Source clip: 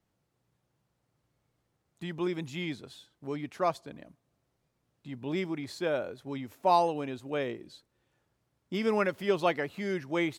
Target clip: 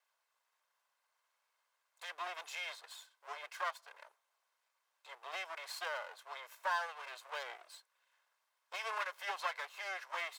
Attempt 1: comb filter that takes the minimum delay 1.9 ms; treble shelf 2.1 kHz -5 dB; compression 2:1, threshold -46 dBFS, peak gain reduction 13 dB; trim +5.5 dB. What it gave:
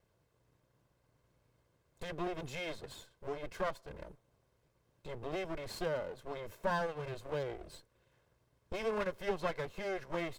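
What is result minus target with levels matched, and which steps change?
1 kHz band -3.5 dB
add after comb filter that takes the minimum: high-pass 870 Hz 24 dB/octave

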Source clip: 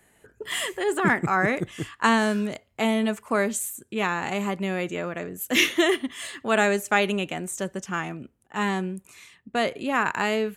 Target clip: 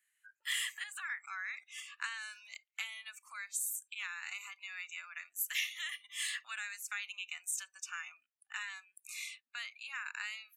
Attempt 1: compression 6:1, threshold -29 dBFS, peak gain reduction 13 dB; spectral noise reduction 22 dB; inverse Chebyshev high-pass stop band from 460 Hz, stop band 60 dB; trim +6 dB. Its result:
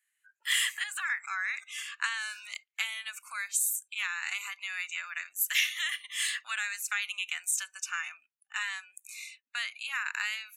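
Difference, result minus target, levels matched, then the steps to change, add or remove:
compression: peak gain reduction -8.5 dB
change: compression 6:1, threshold -39 dBFS, peak gain reduction 21.5 dB

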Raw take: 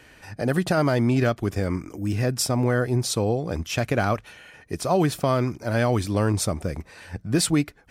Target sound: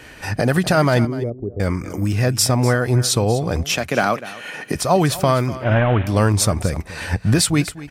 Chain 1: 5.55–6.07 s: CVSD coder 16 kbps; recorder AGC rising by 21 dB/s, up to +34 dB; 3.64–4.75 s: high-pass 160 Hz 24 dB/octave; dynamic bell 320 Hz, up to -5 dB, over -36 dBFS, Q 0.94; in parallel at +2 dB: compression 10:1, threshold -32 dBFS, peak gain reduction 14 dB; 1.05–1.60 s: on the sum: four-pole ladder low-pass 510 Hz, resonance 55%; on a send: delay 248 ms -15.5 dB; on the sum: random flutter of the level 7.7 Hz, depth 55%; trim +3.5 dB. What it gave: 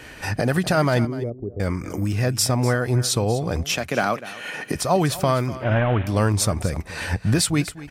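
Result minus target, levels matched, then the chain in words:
compression: peak gain reduction +10.5 dB
5.55–6.07 s: CVSD coder 16 kbps; recorder AGC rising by 21 dB/s, up to +34 dB; 3.64–4.75 s: high-pass 160 Hz 24 dB/octave; dynamic bell 320 Hz, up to -5 dB, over -36 dBFS, Q 0.94; in parallel at +2 dB: compression 10:1, threshold -20.5 dBFS, peak gain reduction 3.5 dB; 1.05–1.60 s: on the sum: four-pole ladder low-pass 510 Hz, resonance 55%; on a send: delay 248 ms -15.5 dB; on the sum: random flutter of the level 7.7 Hz, depth 55%; trim +3.5 dB

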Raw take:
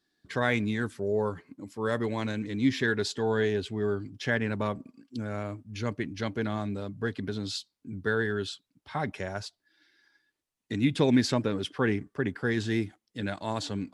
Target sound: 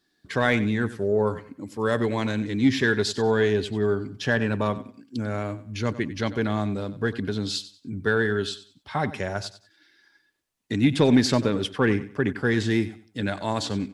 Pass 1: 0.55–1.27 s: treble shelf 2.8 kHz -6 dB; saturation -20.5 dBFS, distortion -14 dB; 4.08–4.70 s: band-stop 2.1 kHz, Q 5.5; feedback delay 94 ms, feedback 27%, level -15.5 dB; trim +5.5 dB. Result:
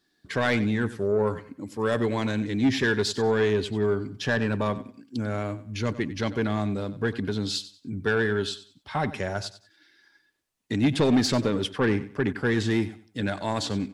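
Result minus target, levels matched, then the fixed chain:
saturation: distortion +13 dB
0.55–1.27 s: treble shelf 2.8 kHz -6 dB; saturation -11.5 dBFS, distortion -27 dB; 4.08–4.70 s: band-stop 2.1 kHz, Q 5.5; feedback delay 94 ms, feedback 27%, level -15.5 dB; trim +5.5 dB

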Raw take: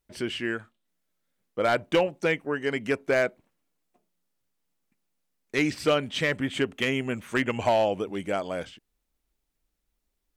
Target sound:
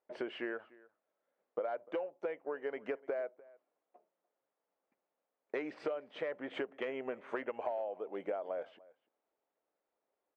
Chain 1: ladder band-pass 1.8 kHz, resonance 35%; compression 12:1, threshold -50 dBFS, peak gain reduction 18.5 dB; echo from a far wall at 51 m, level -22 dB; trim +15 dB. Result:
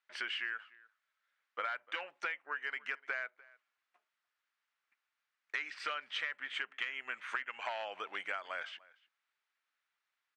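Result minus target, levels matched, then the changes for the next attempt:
500 Hz band -13.5 dB
change: ladder band-pass 690 Hz, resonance 35%

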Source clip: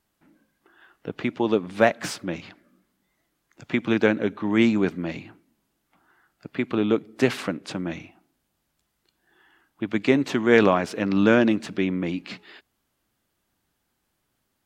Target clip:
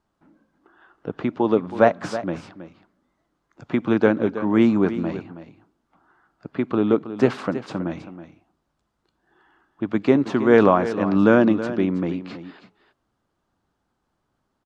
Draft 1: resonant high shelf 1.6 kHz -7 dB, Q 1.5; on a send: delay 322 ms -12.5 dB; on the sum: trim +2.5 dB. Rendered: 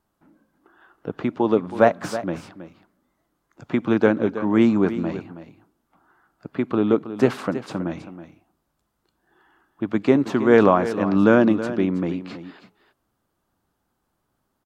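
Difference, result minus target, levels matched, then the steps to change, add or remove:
8 kHz band +3.5 dB
add first: low-pass 6.6 kHz 12 dB/octave

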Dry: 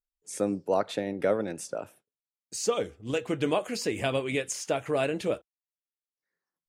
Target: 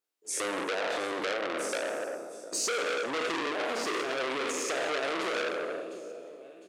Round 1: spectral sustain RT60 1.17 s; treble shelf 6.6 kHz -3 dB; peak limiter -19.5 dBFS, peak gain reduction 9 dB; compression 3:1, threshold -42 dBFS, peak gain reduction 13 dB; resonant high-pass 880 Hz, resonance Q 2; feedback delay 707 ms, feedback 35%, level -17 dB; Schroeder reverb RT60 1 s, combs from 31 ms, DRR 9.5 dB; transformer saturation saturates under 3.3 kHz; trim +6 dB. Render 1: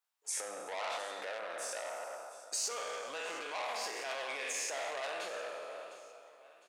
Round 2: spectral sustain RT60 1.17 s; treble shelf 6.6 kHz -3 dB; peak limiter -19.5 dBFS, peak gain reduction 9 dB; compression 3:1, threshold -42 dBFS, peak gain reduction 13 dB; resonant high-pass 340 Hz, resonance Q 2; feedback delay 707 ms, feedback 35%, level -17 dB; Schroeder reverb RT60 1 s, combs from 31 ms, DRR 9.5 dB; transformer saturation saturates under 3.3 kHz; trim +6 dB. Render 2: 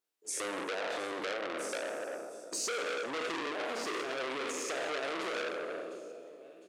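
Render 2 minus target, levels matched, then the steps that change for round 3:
compression: peak gain reduction +4.5 dB
change: compression 3:1, threshold -35 dBFS, peak gain reduction 8.5 dB

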